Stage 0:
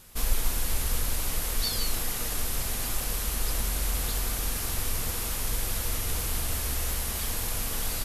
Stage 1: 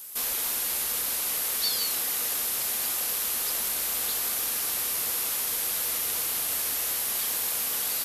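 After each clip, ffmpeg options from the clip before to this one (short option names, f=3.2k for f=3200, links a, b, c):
-filter_complex "[0:a]acrossover=split=5400[a][b];[b]acompressor=threshold=-40dB:ratio=4:attack=1:release=60[c];[a][c]amix=inputs=2:normalize=0,highpass=f=240:p=1,aemphasis=mode=production:type=bsi"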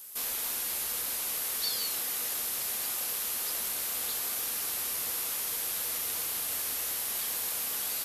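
-af "flanger=delay=9.8:depth=2.5:regen=-70:speed=1.1:shape=triangular"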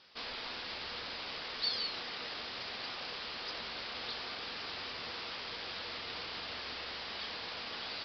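-af "aresample=11025,aresample=44100"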